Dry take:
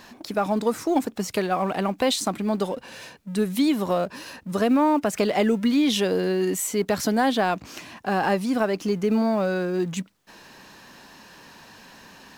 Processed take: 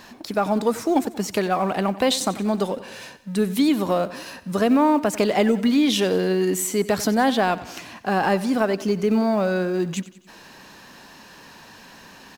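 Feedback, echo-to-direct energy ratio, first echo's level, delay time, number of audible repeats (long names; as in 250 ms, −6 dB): 52%, −15.5 dB, −17.0 dB, 92 ms, 4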